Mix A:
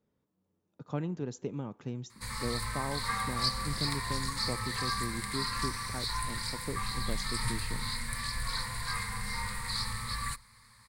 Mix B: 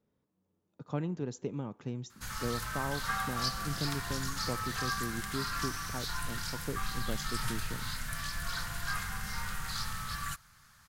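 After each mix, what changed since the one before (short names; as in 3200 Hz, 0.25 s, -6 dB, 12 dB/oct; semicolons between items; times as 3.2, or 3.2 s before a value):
background: remove ripple EQ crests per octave 0.95, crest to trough 14 dB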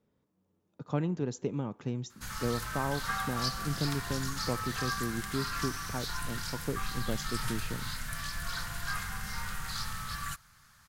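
speech +3.5 dB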